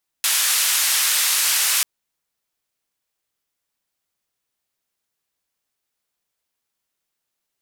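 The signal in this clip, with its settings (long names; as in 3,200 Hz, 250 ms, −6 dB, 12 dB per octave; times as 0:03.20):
band-limited noise 1,400–13,000 Hz, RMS −19 dBFS 1.59 s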